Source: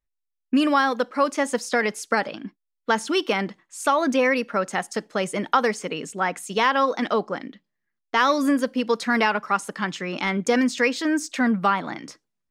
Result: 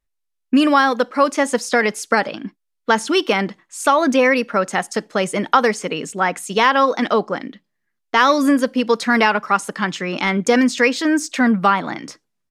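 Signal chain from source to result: downsampling 32000 Hz; gain +5.5 dB

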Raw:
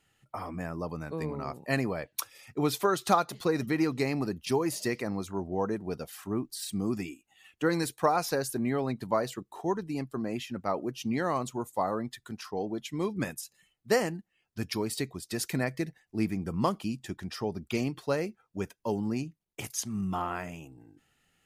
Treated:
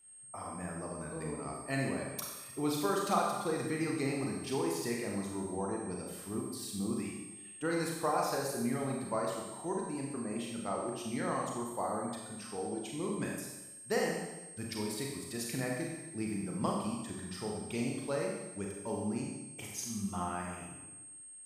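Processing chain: whine 8500 Hz -53 dBFS; Schroeder reverb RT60 1.1 s, combs from 30 ms, DRR -1.5 dB; gain -8.5 dB

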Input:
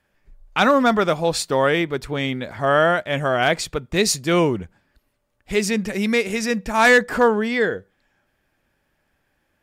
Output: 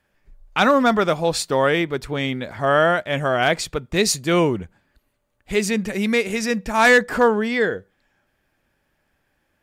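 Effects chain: 4.12–6.37 notch 5300 Hz, Q 10

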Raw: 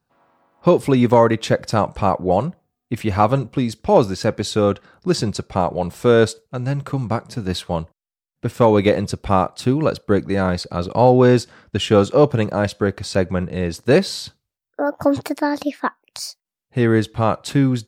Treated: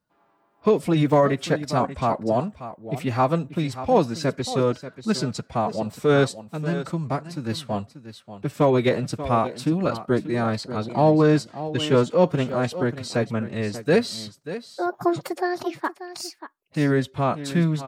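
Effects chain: echo 0.586 s -13 dB; formant-preserving pitch shift +3.5 st; gain -4.5 dB

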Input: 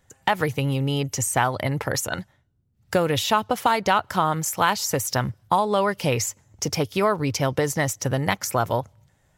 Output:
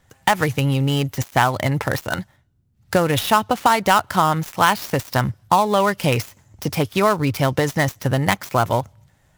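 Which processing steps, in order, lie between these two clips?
switching dead time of 0.067 ms; bell 460 Hz -3.5 dB 0.63 oct; gain +5 dB

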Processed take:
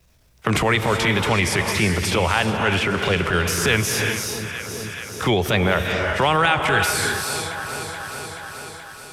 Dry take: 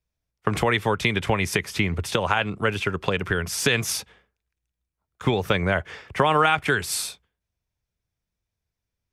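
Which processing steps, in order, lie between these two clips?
wow and flutter 100 cents; transient shaper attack -10 dB, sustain +3 dB; on a send: echo with dull and thin repeats by turns 0.214 s, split 980 Hz, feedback 68%, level -13.5 dB; on the sum: non-linear reverb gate 0.4 s rising, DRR 5.5 dB; three-band squash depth 70%; gain +4.5 dB

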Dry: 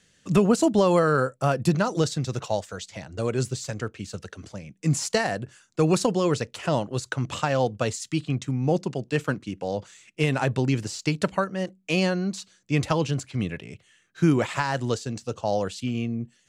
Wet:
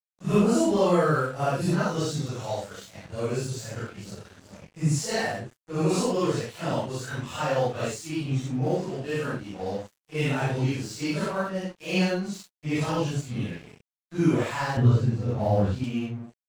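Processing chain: phase scrambler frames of 0.2 s; 14.77–15.84 tone controls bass +14 dB, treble -14 dB; crossover distortion -43.5 dBFS; gain -1.5 dB

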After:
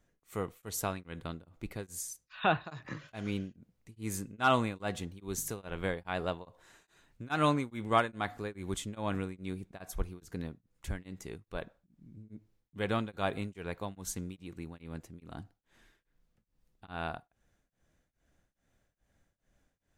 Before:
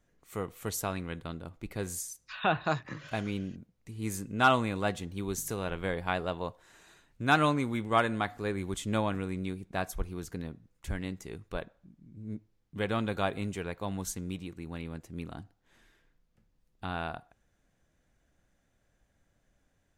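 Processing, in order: beating tremolo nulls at 2.4 Hz

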